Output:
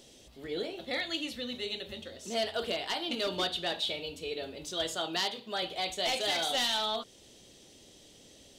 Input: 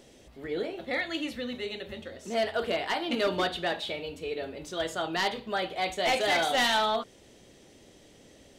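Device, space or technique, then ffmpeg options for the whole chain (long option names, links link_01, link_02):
over-bright horn tweeter: -filter_complex "[0:a]highshelf=frequency=2600:width_type=q:width=1.5:gain=6.5,alimiter=limit=-16.5dB:level=0:latency=1:release=491,asettb=1/sr,asplit=3[link_01][link_02][link_03];[link_01]atrim=end=4.954[link_04];[link_02]atrim=start=4.95:end=5.63,asetpts=PTS-STARTPTS,afade=type=in:duration=0.004:curve=qsin,afade=type=out:start_time=0.676:duration=0.004:curve=qsin,highpass=150[link_05];[link_03]atrim=start=5.626[link_06];[link_04][link_05]acrossfade=duration=0.004:curve1=hsin:curve2=qsin[link_07];[link_07][link_06]acrossfade=duration=0.004:curve1=qsin:curve2=hsin,volume=-3.5dB"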